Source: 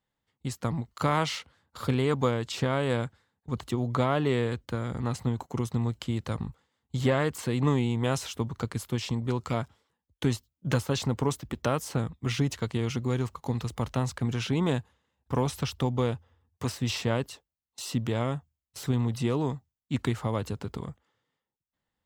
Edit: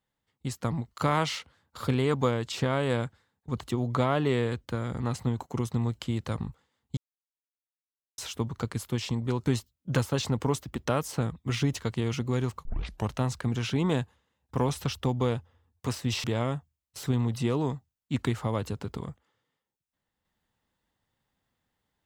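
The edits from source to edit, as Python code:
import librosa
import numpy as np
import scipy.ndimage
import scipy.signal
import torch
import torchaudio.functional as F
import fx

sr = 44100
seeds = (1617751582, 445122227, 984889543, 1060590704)

y = fx.edit(x, sr, fx.silence(start_s=6.97, length_s=1.21),
    fx.cut(start_s=9.46, length_s=0.77),
    fx.tape_start(start_s=13.42, length_s=0.44),
    fx.cut(start_s=17.01, length_s=1.03), tone=tone)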